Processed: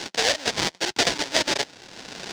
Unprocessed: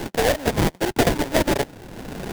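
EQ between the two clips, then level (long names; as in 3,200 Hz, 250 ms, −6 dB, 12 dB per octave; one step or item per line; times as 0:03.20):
high-frequency loss of the air 120 metres
spectral tilt +4 dB per octave
parametric band 5,200 Hz +8 dB 1.4 octaves
−3.0 dB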